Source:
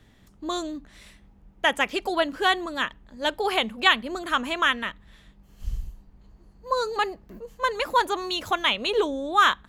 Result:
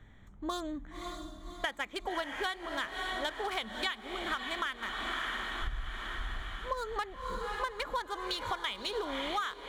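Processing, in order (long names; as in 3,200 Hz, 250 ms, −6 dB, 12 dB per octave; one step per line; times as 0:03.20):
adaptive Wiener filter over 9 samples
parametric band 360 Hz −8.5 dB 3 octaves
notch filter 2,700 Hz, Q 5.2
feedback delay with all-pass diffusion 571 ms, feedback 57%, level −10 dB
downward compressor 12 to 1, threshold −36 dBFS, peak gain reduction 20 dB
mains-hum notches 60/120/180/240 Hz
level +4.5 dB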